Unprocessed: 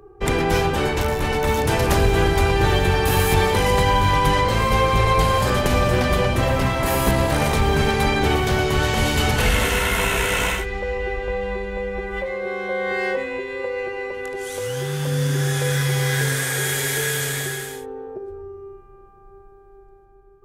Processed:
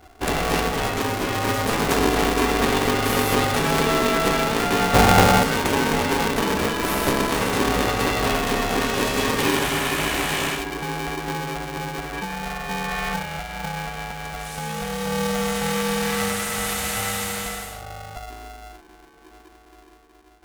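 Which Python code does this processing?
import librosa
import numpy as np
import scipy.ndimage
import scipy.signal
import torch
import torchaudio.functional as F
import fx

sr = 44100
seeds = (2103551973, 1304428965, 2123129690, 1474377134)

y = fx.small_body(x, sr, hz=(250.0, 400.0), ring_ms=35, db=16, at=(4.93, 5.42), fade=0.02)
y = y * np.sign(np.sin(2.0 * np.pi * 340.0 * np.arange(len(y)) / sr))
y = F.gain(torch.from_numpy(y), -3.0).numpy()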